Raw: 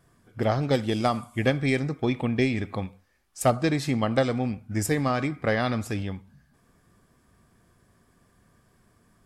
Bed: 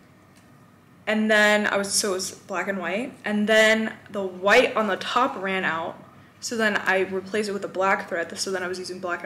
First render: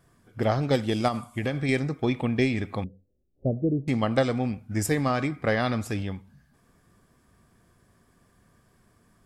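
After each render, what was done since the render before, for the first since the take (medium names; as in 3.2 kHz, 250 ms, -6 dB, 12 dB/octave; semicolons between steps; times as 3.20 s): 1.08–1.69 s: compression 5:1, threshold -23 dBFS; 2.84–3.88 s: steep low-pass 520 Hz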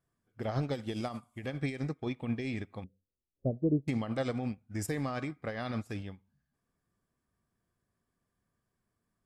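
peak limiter -19.5 dBFS, peak gain reduction 9 dB; upward expansion 2.5:1, over -37 dBFS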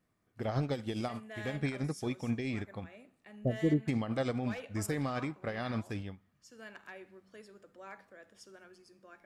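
add bed -27.5 dB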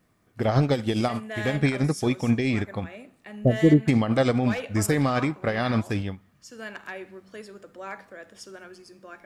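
trim +11.5 dB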